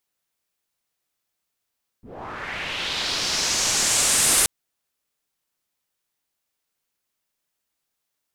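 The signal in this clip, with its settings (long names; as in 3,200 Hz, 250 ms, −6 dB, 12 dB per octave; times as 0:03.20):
filter sweep on noise white, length 2.43 s lowpass, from 130 Hz, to 9,700 Hz, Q 2.2, linear, gain ramp +9.5 dB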